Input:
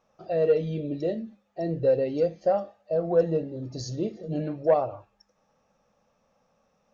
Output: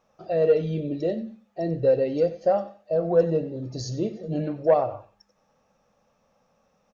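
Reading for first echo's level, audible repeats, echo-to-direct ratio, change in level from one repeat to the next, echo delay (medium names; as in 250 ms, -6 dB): -16.0 dB, 2, -16.0 dB, -13.5 dB, 94 ms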